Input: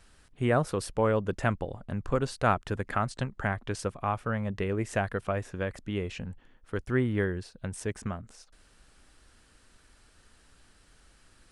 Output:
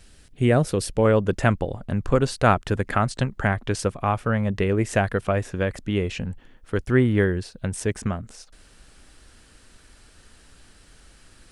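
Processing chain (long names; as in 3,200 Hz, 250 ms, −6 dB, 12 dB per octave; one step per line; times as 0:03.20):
parametric band 1,100 Hz −10 dB 1.3 octaves, from 0:01.05 −3 dB
level +8.5 dB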